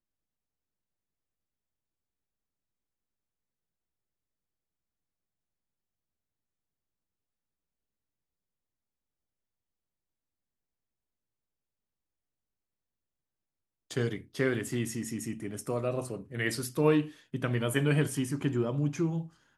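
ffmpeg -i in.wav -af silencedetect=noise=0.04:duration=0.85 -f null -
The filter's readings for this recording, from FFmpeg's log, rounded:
silence_start: 0.00
silence_end: 13.97 | silence_duration: 13.97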